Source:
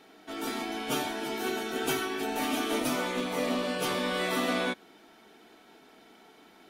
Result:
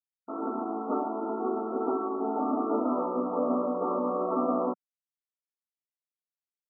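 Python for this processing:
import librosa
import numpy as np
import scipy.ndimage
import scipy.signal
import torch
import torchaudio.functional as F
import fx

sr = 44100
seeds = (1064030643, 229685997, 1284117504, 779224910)

y = fx.quant_dither(x, sr, seeds[0], bits=6, dither='none')
y = fx.brickwall_bandpass(y, sr, low_hz=190.0, high_hz=1400.0)
y = y * 10.0 ** (3.0 / 20.0)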